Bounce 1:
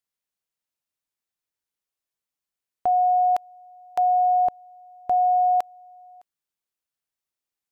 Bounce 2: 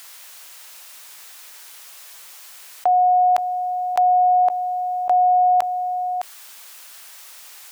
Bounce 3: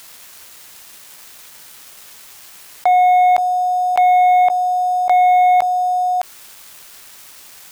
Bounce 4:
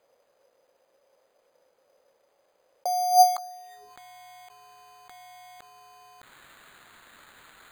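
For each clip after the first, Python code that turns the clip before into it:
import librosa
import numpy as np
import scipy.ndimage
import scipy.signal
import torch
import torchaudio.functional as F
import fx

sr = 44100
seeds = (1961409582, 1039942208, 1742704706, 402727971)

y1 = scipy.signal.sosfilt(scipy.signal.butter(2, 750.0, 'highpass', fs=sr, output='sos'), x)
y1 = fx.env_flatten(y1, sr, amount_pct=70)
y1 = F.gain(torch.from_numpy(y1), 7.0).numpy()
y2 = fx.leveller(y1, sr, passes=2)
y2 = np.sign(y2) * np.maximum(np.abs(y2) - 10.0 ** (-40.0 / 20.0), 0.0)
y3 = fx.filter_sweep_bandpass(y2, sr, from_hz=530.0, to_hz=7000.0, start_s=3.1, end_s=3.94, q=8.0)
y3 = np.repeat(y3[::8], 8)[:len(y3)]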